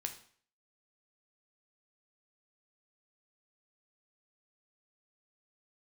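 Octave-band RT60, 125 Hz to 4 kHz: 0.50, 0.50, 0.50, 0.50, 0.50, 0.50 s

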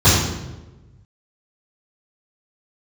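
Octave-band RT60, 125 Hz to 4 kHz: 1.8, 1.3, 1.3, 0.95, 0.85, 0.75 s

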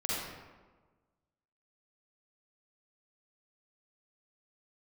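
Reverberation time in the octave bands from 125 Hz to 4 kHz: 1.5, 1.5, 1.4, 1.3, 1.0, 0.75 s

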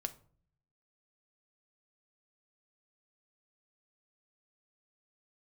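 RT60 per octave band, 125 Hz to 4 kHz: 1.0, 0.80, 0.55, 0.45, 0.35, 0.30 s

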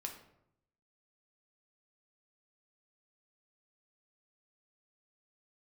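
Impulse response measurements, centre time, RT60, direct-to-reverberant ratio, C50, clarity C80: 19 ms, 0.75 s, 2.0 dB, 8.5 dB, 11.0 dB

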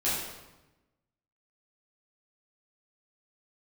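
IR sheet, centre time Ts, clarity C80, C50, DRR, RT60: 74 ms, 3.0 dB, 0.5 dB, -10.0 dB, 1.0 s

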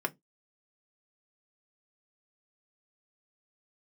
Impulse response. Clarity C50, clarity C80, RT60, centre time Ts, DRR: 28.5 dB, 39.0 dB, 0.15 s, 4 ms, 4.0 dB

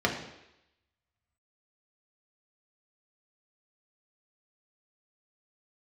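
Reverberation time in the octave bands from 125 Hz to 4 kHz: 0.70, 0.80, 0.85, 0.85, 0.90, 0.95 s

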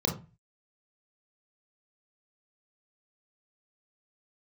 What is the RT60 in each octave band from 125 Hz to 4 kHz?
0.50, 0.40, 0.30, 0.30, 0.30, 0.20 s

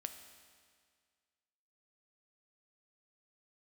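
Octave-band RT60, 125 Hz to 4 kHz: 1.9, 1.9, 1.9, 1.9, 1.9, 1.8 s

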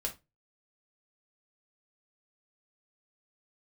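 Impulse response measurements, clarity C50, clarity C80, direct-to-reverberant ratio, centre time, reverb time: 13.5 dB, 23.0 dB, -0.5 dB, 11 ms, 0.20 s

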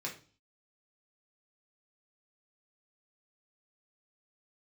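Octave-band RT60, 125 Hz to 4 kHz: 0.55, 0.50, 0.40, 0.35, 0.35, 0.45 s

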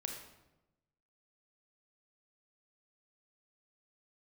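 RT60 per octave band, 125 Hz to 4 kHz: 1.3, 1.2, 1.1, 0.90, 0.80, 0.70 s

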